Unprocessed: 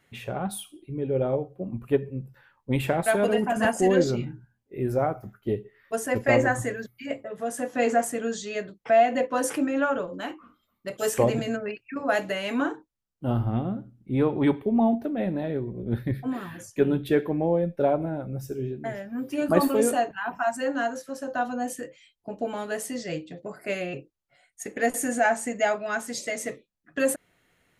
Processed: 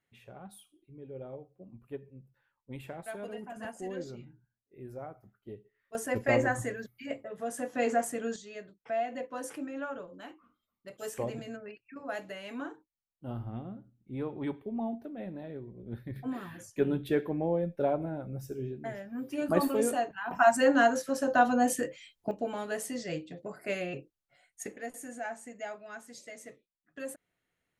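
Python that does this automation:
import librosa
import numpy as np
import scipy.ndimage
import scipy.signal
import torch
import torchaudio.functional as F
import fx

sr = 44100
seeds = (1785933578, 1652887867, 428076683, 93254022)

y = fx.gain(x, sr, db=fx.steps((0.0, -18.0), (5.95, -5.5), (8.36, -13.0), (16.16, -6.0), (20.31, 4.0), (22.31, -4.0), (24.76, -16.0)))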